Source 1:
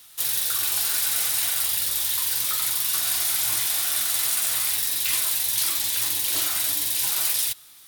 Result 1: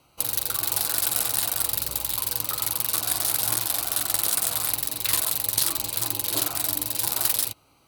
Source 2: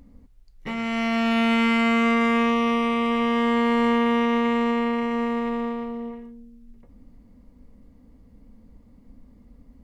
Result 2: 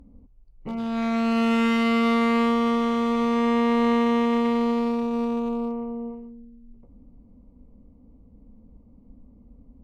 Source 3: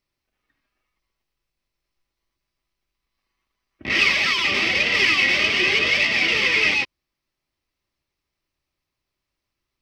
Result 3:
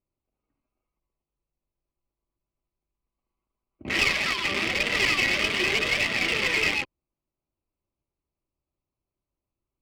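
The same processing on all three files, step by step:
Wiener smoothing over 25 samples; one-sided clip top -20.5 dBFS; match loudness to -23 LUFS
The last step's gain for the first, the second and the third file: +7.5, +0.5, -2.0 dB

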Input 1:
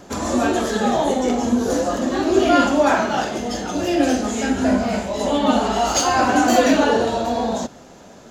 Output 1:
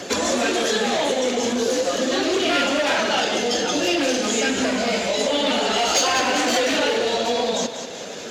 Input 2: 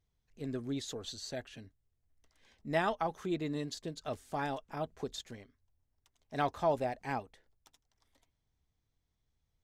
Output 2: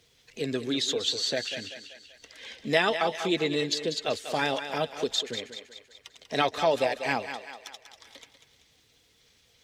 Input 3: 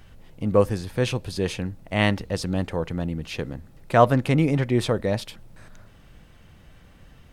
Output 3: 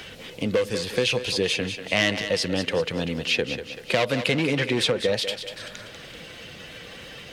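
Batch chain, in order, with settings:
bin magnitudes rounded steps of 15 dB; hard clip -16 dBFS; bell 490 Hz +8 dB 0.44 oct; compressor, threshold -20 dBFS; weighting filter D; thinning echo 0.192 s, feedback 40%, high-pass 370 Hz, level -10 dB; three-band squash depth 40%; normalise peaks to -6 dBFS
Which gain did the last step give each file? +1.0, +6.5, +1.0 dB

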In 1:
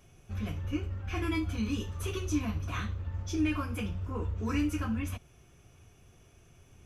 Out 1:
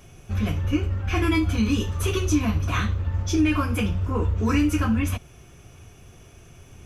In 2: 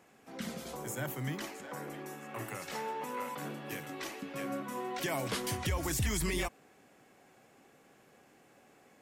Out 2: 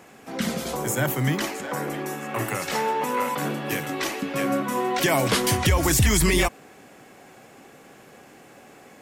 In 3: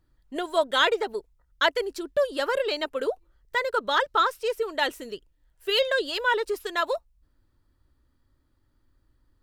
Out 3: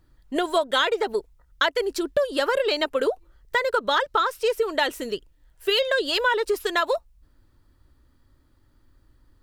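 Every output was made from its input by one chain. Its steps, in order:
compressor 6:1, threshold -26 dBFS; match loudness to -24 LUFS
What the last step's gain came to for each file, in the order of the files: +10.5, +13.5, +7.5 dB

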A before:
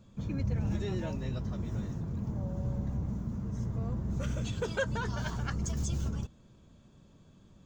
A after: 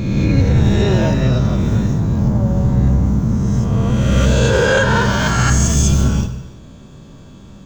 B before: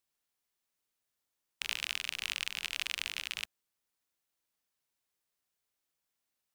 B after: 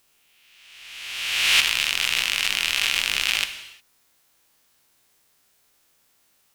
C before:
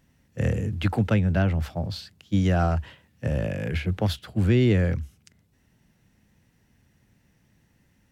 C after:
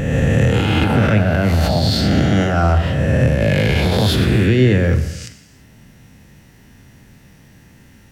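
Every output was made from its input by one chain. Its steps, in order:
spectral swells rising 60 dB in 1.61 s; compressor, threshold -22 dBFS; limiter -21 dBFS; non-linear reverb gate 0.38 s falling, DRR 7.5 dB; normalise peaks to -2 dBFS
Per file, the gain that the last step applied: +16.0, +17.5, +14.0 dB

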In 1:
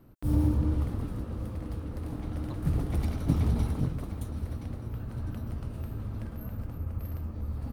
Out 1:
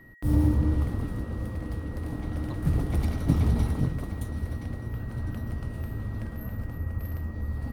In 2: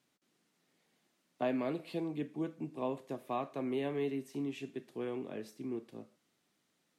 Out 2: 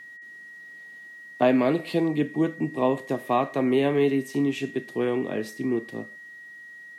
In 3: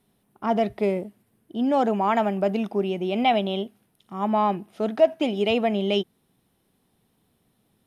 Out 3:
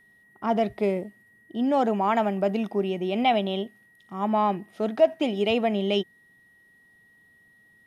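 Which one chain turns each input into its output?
whine 1900 Hz -55 dBFS; normalise peaks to -9 dBFS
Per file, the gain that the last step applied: +3.0, +13.5, -1.0 dB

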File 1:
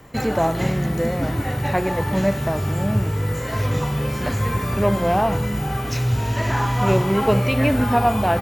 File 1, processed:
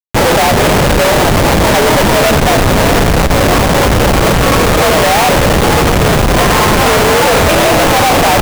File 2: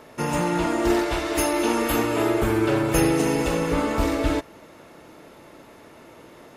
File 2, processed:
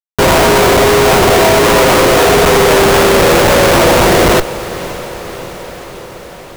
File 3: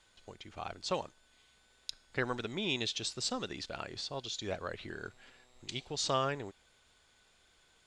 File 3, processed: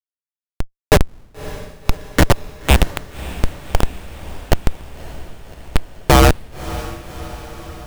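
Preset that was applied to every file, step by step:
half-waves squared off; in parallel at -1 dB: limiter -17 dBFS; on the sum: mistuned SSB +64 Hz 380–3600 Hz; Schmitt trigger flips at -20 dBFS; diffused feedback echo 0.578 s, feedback 66%, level -15.5 dB; normalise peaks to -1.5 dBFS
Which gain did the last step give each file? +9.5, +11.0, +25.5 dB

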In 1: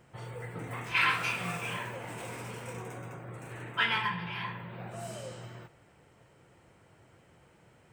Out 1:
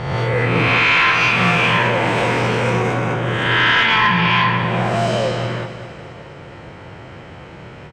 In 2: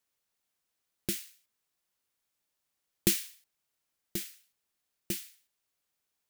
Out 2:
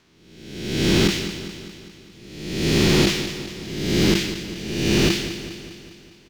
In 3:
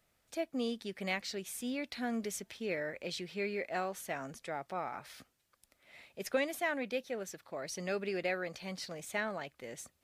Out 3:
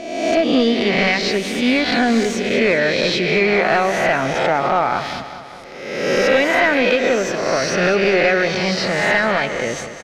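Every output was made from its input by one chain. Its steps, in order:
spectral swells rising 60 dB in 1.10 s; bell 8700 Hz +8.5 dB 2.5 oct; compressor 4:1, threshold -30 dBFS; hard clip -29.5 dBFS; air absorption 230 m; on a send: feedback echo 0.202 s, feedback 58%, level -11.5 dB; on the sum: ending taper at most 140 dB/s; normalise peaks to -6 dBFS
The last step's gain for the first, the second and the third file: +21.5, +24.0, +21.5 dB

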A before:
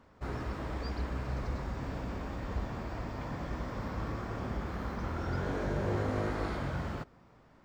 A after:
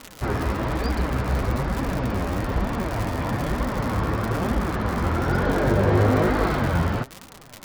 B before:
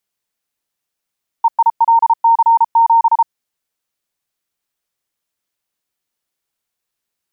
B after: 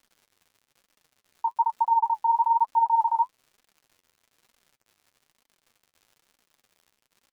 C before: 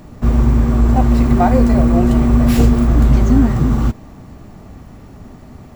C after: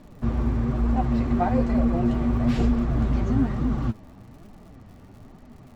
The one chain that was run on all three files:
LPF 4500 Hz 12 dB/oct; crackle 120/s -36 dBFS; flange 1.1 Hz, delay 3.3 ms, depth 9.2 ms, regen +35%; match loudness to -24 LUFS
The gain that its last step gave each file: +17.0, -7.0, -5.5 dB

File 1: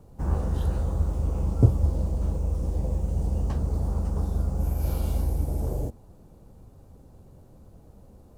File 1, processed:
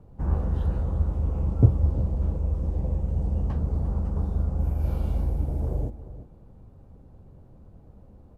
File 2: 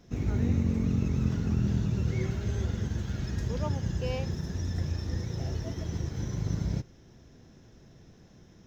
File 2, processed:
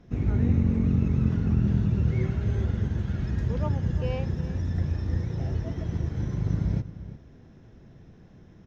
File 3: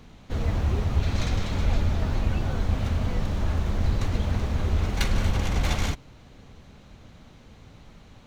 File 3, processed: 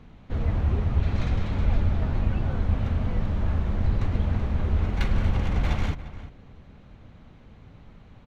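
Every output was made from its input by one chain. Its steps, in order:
tone controls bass +3 dB, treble -14 dB; outdoor echo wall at 60 m, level -14 dB; match loudness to -27 LUFS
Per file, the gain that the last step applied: -2.0, +1.5, -2.0 dB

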